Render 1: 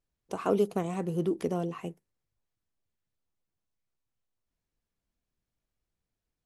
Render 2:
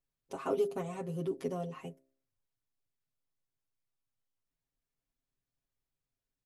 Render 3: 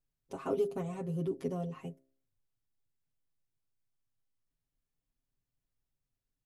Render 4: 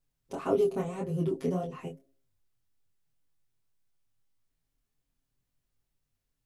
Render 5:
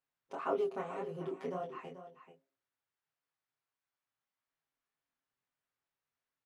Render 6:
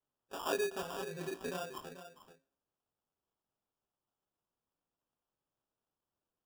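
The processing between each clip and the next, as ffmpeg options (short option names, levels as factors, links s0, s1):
-af "aecho=1:1:7.4:0.94,bandreject=f=66.61:t=h:w=4,bandreject=f=133.22:t=h:w=4,bandreject=f=199.83:t=h:w=4,bandreject=f=266.44:t=h:w=4,bandreject=f=333.05:t=h:w=4,bandreject=f=399.66:t=h:w=4,bandreject=f=466.27:t=h:w=4,bandreject=f=532.88:t=h:w=4,bandreject=f=599.49:t=h:w=4,bandreject=f=666.1:t=h:w=4,volume=0.398"
-af "lowshelf=f=290:g=9,volume=0.668"
-af "flanger=delay=20:depth=6.3:speed=1.8,volume=2.66"
-af "bandpass=f=1300:t=q:w=0.92:csg=0,aecho=1:1:436:0.251,volume=1.12"
-af "acrusher=samples=21:mix=1:aa=0.000001,volume=0.891"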